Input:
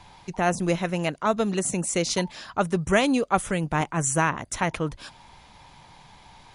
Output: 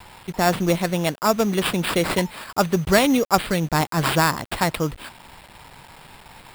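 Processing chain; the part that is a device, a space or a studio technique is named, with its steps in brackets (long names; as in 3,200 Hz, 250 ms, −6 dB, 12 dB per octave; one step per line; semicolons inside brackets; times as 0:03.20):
early 8-bit sampler (sample-rate reduction 6,200 Hz, jitter 0%; bit reduction 8 bits)
level +4 dB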